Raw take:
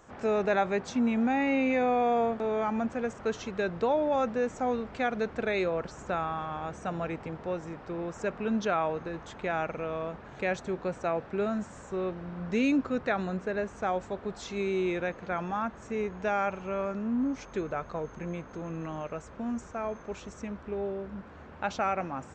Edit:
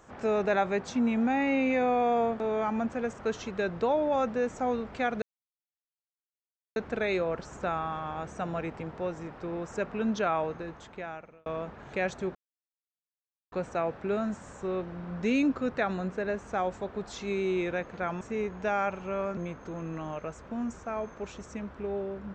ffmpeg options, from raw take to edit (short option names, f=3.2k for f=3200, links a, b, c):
-filter_complex "[0:a]asplit=6[a][b][c][d][e][f];[a]atrim=end=5.22,asetpts=PTS-STARTPTS,afade=t=out:st=5.216:d=0.004:c=hsin,apad=pad_dur=1.54[g];[b]atrim=start=5.22:end=9.92,asetpts=PTS-STARTPTS,afade=t=in:d=0.004:c=hsin,afade=t=out:st=3.68:d=1.02[h];[c]atrim=start=9.92:end=10.81,asetpts=PTS-STARTPTS,afade=t=in:d=0.004:c=hsin,afade=t=out:st=0.886:d=0.004:c=hsin,apad=pad_dur=1.17[i];[d]atrim=start=10.81:end=15.502,asetpts=PTS-STARTPTS,afade=t=in:d=0.004:c=hsin[j];[e]atrim=start=15.808:end=16.972[k];[f]atrim=start=18.248[l];[g][h][i][j]concat=n=4:v=0:a=1[m];[m][k]acrossfade=d=0.004:c1=hsin:c2=hsin[n];[n][l]acrossfade=d=0.004:c1=hsin:c2=hsin"